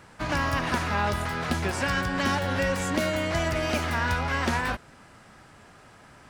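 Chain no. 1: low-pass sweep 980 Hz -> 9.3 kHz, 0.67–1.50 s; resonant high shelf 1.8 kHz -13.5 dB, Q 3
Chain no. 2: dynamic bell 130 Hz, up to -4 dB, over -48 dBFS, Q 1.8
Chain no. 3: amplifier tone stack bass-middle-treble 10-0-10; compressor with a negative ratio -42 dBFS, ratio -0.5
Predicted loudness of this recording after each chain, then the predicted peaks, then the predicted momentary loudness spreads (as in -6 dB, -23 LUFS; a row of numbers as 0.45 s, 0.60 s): -23.5 LUFS, -27.0 LUFS, -44.0 LUFS; -8.0 dBFS, -13.5 dBFS, -25.5 dBFS; 7 LU, 3 LU, 8 LU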